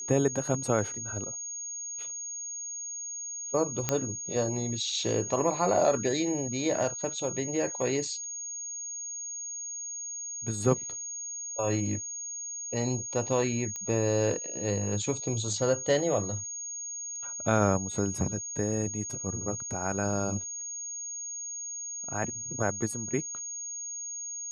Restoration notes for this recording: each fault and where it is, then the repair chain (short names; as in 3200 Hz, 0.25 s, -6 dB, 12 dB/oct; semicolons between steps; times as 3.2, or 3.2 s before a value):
tone 6600 Hz -35 dBFS
3.89 pop -10 dBFS
13.76 pop -22 dBFS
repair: de-click; notch 6600 Hz, Q 30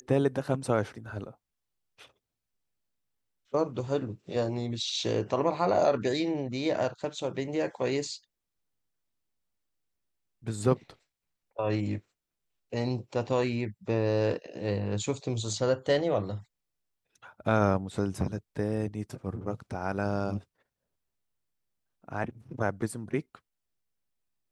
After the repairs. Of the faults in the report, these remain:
13.76 pop